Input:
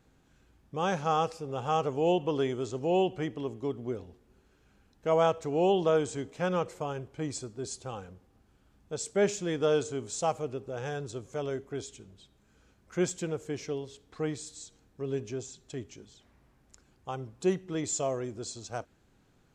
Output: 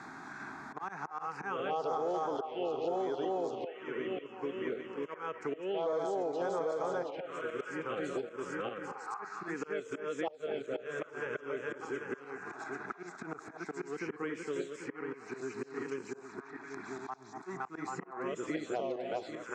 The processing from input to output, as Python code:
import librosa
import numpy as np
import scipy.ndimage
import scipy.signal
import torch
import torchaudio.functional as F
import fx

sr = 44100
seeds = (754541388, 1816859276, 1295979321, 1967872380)

p1 = fx.reverse_delay_fb(x, sr, ms=395, feedback_pct=52, wet_db=-1.0)
p2 = fx.auto_swell(p1, sr, attack_ms=624.0)
p3 = fx.leveller(p2, sr, passes=1)
p4 = fx.over_compress(p3, sr, threshold_db=-26.0, ratio=-1.0)
p5 = p3 + (p4 * 10.0 ** (-3.0 / 20.0))
p6 = fx.auto_swell(p5, sr, attack_ms=476.0)
p7 = fx.bandpass_edges(p6, sr, low_hz=400.0, high_hz=3600.0)
p8 = p7 + fx.echo_stepped(p7, sr, ms=240, hz=690.0, octaves=0.7, feedback_pct=70, wet_db=-8.5, dry=0)
p9 = fx.env_phaser(p8, sr, low_hz=510.0, high_hz=2800.0, full_db=-19.0)
p10 = fx.band_squash(p9, sr, depth_pct=100)
y = p10 * 10.0 ** (-5.0 / 20.0)